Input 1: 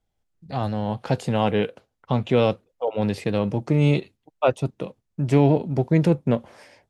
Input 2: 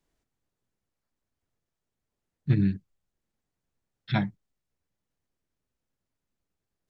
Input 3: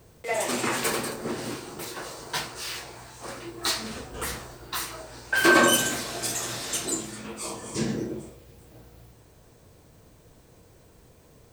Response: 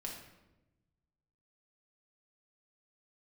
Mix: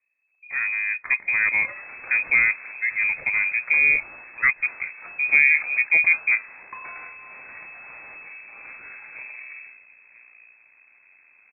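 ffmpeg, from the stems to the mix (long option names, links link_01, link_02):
-filter_complex "[0:a]highshelf=frequency=2800:width_type=q:width=1.5:gain=6,volume=0dB,asplit=2[link_01][link_02];[1:a]aphaser=in_gain=1:out_gain=1:delay=3.4:decay=0.49:speed=0.77:type=triangular,adelay=250,volume=1.5dB[link_03];[2:a]adelay=1400,volume=1.5dB[link_04];[link_02]apad=whole_len=315297[link_05];[link_03][link_05]sidechaincompress=threshold=-35dB:ratio=8:attack=44:release=489[link_06];[link_06][link_04]amix=inputs=2:normalize=0,aeval=exprs='max(val(0),0)':channel_layout=same,acompressor=threshold=-33dB:ratio=20,volume=0dB[link_07];[link_01][link_07]amix=inputs=2:normalize=0,lowpass=frequency=2200:width_type=q:width=0.5098,lowpass=frequency=2200:width_type=q:width=0.6013,lowpass=frequency=2200:width_type=q:width=0.9,lowpass=frequency=2200:width_type=q:width=2.563,afreqshift=-2600"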